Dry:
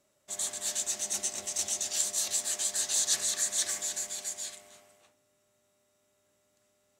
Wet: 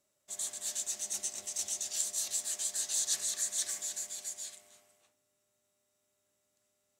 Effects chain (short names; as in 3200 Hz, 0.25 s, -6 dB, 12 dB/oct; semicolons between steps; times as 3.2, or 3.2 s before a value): high shelf 3900 Hz +6.5 dB; gain -9 dB